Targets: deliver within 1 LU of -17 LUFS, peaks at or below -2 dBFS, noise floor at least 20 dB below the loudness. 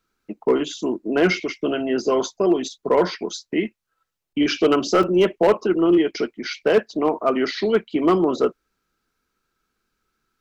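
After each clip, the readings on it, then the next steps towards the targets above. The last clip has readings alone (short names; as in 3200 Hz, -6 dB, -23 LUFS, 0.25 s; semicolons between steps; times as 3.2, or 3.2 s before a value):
clipped 0.9%; flat tops at -9.5 dBFS; dropouts 1; longest dropout 3.5 ms; loudness -21.0 LUFS; peak -9.5 dBFS; loudness target -17.0 LUFS
-> clip repair -9.5 dBFS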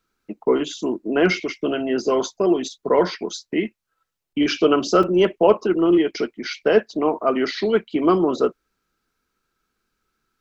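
clipped 0.0%; dropouts 1; longest dropout 3.5 ms
-> interpolate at 5.03, 3.5 ms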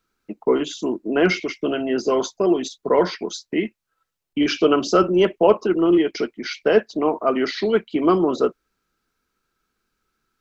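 dropouts 0; loudness -20.5 LUFS; peak -3.5 dBFS; loudness target -17.0 LUFS
-> gain +3.5 dB; limiter -2 dBFS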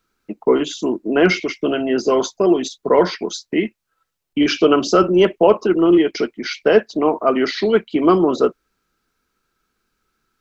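loudness -17.0 LUFS; peak -2.0 dBFS; noise floor -75 dBFS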